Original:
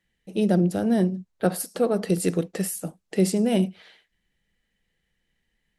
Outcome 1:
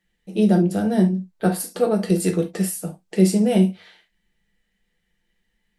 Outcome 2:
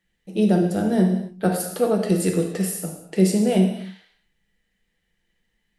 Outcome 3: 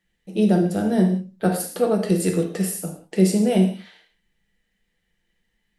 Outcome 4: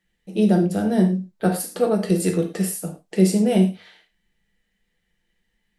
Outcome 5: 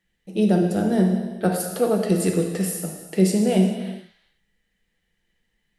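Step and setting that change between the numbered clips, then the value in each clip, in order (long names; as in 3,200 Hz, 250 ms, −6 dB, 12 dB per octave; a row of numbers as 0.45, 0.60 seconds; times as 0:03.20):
reverb whose tail is shaped and stops, gate: 90, 310, 210, 140, 460 milliseconds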